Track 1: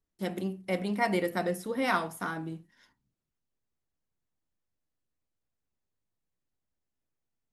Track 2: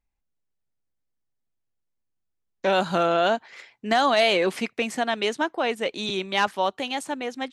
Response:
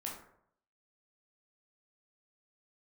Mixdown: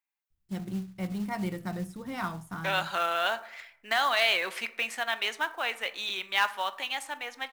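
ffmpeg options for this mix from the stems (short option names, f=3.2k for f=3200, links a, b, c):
-filter_complex "[0:a]equalizer=f=250:t=o:w=1:g=-8,equalizer=f=500:t=o:w=1:g=-10,equalizer=f=2k:t=o:w=1:g=-6,equalizer=f=8k:t=o:w=1:g=10,adelay=300,volume=-2dB[a];[1:a]highpass=1.2k,aemphasis=mode=production:type=50fm,volume=-1.5dB,asplit=3[b][c][d];[c]volume=-8.5dB[e];[d]apad=whole_len=344957[f];[a][f]sidechaincompress=threshold=-29dB:ratio=8:attack=16:release=796[g];[2:a]atrim=start_sample=2205[h];[e][h]afir=irnorm=-1:irlink=0[i];[g][b][i]amix=inputs=3:normalize=0,bass=f=250:g=13,treble=f=4k:g=-15,acrusher=bits=5:mode=log:mix=0:aa=0.000001"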